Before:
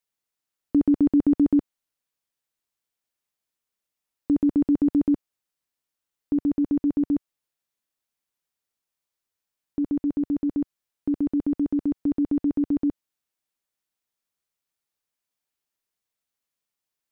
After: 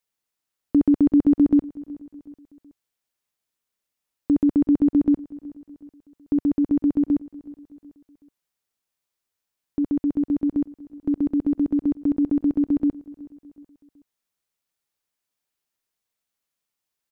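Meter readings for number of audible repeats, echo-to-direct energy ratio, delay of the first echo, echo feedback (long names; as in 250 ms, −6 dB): 3, −20.0 dB, 373 ms, 48%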